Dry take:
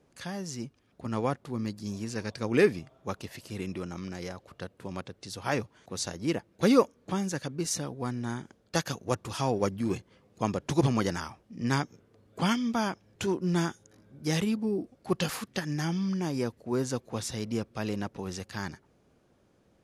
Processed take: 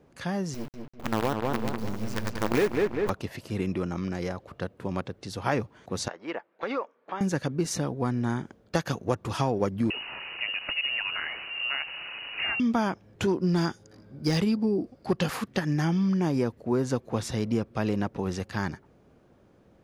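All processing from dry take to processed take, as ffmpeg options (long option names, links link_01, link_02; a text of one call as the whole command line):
ffmpeg -i in.wav -filter_complex "[0:a]asettb=1/sr,asplit=3[link_01][link_02][link_03];[link_01]atrim=end=0.544[link_04];[link_02]atrim=start=0.54:end=3.1,asetpts=PTS-STARTPTS,afade=type=in:duration=0.004:curve=qsin,afade=type=out:start_time=2.556:duration=0.004:curve=qsin,asubboost=boost=12:cutoff=51,acrusher=bits=5:dc=4:mix=0:aa=0.000001,asplit=2[link_05][link_06];[link_06]adelay=197,lowpass=frequency=2900:poles=1,volume=-4.5dB,asplit=2[link_07][link_08];[link_08]adelay=197,lowpass=frequency=2900:poles=1,volume=0.46,asplit=2[link_09][link_10];[link_10]adelay=197,lowpass=frequency=2900:poles=1,volume=0.46,asplit=2[link_11][link_12];[link_12]adelay=197,lowpass=frequency=2900:poles=1,volume=0.46,asplit=2[link_13][link_14];[link_14]adelay=197,lowpass=frequency=2900:poles=1,volume=0.46,asplit=2[link_15][link_16];[link_16]adelay=197,lowpass=frequency=2900:poles=1,volume=0.46[link_17];[link_05][link_07][link_09][link_11][link_13][link_15][link_17]amix=inputs=7:normalize=0,atrim=end_sample=112896[link_18];[link_03]atrim=start=3.096[link_19];[link_04][link_18]acrossfade=duration=0.004:curve1=hsin:curve2=qsin[link_20];[link_20][link_19]acrossfade=duration=0.004:curve1=qsin:curve2=hsin,asettb=1/sr,asplit=3[link_21][link_22][link_23];[link_21]atrim=end=6.084[link_24];[link_22]atrim=start=6.08:end=7.21,asetpts=PTS-STARTPTS,afade=type=in:duration=0.004:curve=qsin,afade=type=out:start_time=1.126:duration=0.004:curve=qsin,highpass=720,lowpass=2300,acompressor=threshold=-32dB:ratio=5:attack=3.2:release=140:knee=1:detection=peak[link_25];[link_23]atrim=start=7.206[link_26];[link_24][link_25]acrossfade=duration=0.004:curve1=hsin:curve2=qsin[link_27];[link_27][link_26]acrossfade=duration=0.004:curve1=qsin:curve2=hsin,asettb=1/sr,asplit=3[link_28][link_29][link_30];[link_28]atrim=end=9.904[link_31];[link_29]atrim=start=9.9:end=12.6,asetpts=PTS-STARTPTS,afade=type=in:duration=0.004:curve=qsin,afade=type=out:start_time=2.696:duration=0.004:curve=qsin,aeval=exprs='val(0)+0.5*0.015*sgn(val(0))':channel_layout=same,acompressor=threshold=-31dB:ratio=3:attack=3.2:release=140:knee=1:detection=peak,lowpass=frequency=2600:width_type=q:width=0.5098,lowpass=frequency=2600:width_type=q:width=0.6013,lowpass=frequency=2600:width_type=q:width=0.9,lowpass=frequency=2600:width_type=q:width=2.563,afreqshift=-3000[link_32];[link_30]atrim=start=12.596[link_33];[link_31][link_32]acrossfade=duration=0.004:curve1=hsin:curve2=qsin[link_34];[link_34][link_33]acrossfade=duration=0.004:curve1=qsin:curve2=hsin,asettb=1/sr,asplit=3[link_35][link_36][link_37];[link_35]atrim=end=13.284[link_38];[link_36]atrim=start=13.28:end=15.16,asetpts=PTS-STARTPTS,afade=type=in:duration=0.004:curve=qsin,afade=type=out:start_time=1.876:duration=0.004:curve=qsin,equalizer=frequency=4800:width_type=o:width=0.2:gain=13.5,asoftclip=type=hard:threshold=-19.5dB[link_39];[link_37]atrim=start=15.156[link_40];[link_38][link_39]acrossfade=duration=0.004:curve1=hsin:curve2=qsin[link_41];[link_41][link_40]acrossfade=duration=0.004:curve1=qsin:curve2=hsin,equalizer=frequency=9200:width_type=o:width=2.7:gain=-9.5,acompressor=threshold=-28dB:ratio=6,volume=7dB" out.wav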